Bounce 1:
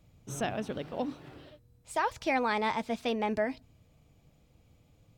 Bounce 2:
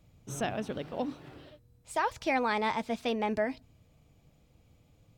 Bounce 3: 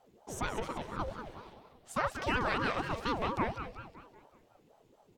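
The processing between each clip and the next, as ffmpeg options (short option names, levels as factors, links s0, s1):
-af anull
-af "aecho=1:1:188|376|564|752|940|1128:0.355|0.174|0.0852|0.0417|0.0205|0.01,aeval=exprs='val(0)*sin(2*PI*490*n/s+490*0.55/4.2*sin(2*PI*4.2*n/s))':c=same"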